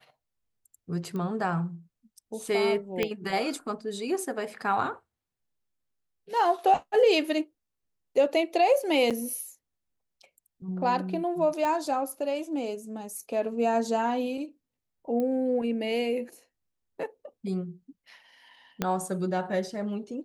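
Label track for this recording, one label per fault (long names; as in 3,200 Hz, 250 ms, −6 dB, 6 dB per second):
1.160000	1.160000	click −24 dBFS
3.030000	3.030000	click −13 dBFS
9.100000	9.110000	drop-out 7 ms
11.650000	11.650000	click −17 dBFS
15.200000	15.200000	click −20 dBFS
18.820000	18.820000	click −12 dBFS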